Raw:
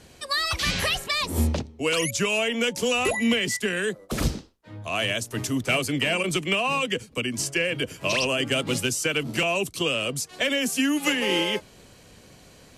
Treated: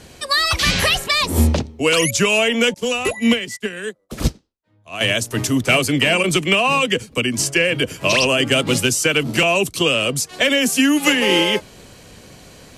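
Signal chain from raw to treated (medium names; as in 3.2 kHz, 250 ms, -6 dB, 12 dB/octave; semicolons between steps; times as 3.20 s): 2.74–5.01 s: upward expansion 2.5:1, over -37 dBFS; trim +8 dB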